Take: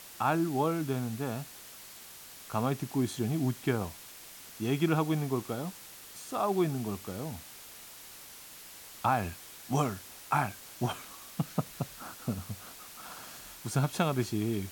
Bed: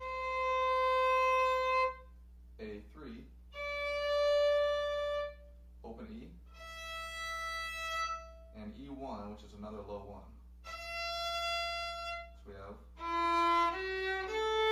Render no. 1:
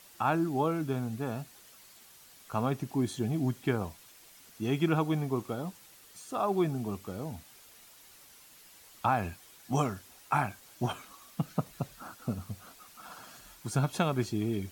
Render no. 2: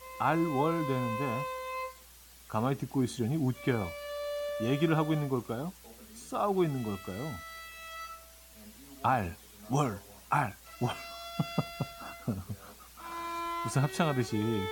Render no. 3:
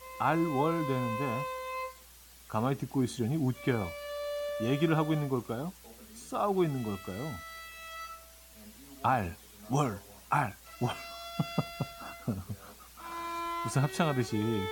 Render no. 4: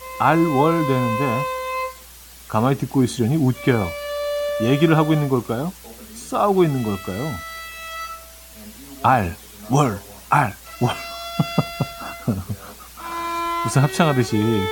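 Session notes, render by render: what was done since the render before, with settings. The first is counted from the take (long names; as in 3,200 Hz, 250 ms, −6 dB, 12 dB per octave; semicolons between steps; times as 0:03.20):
broadband denoise 8 dB, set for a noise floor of −49 dBFS
mix in bed −6.5 dB
no processing that can be heard
level +12 dB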